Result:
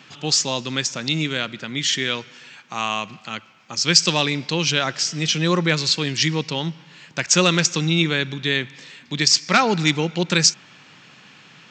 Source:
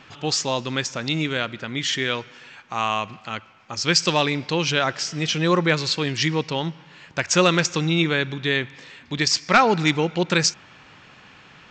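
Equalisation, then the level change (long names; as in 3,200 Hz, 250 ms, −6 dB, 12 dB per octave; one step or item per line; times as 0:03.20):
high-pass filter 140 Hz 24 dB per octave
low-shelf EQ 250 Hz +11.5 dB
high-shelf EQ 2,300 Hz +12 dB
−5.0 dB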